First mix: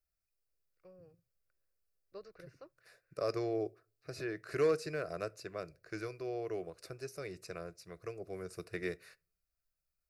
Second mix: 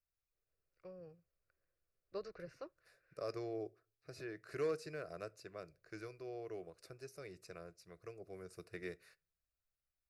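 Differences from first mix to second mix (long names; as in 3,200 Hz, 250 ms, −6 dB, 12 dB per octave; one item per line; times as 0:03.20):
first voice +5.0 dB
second voice −7.5 dB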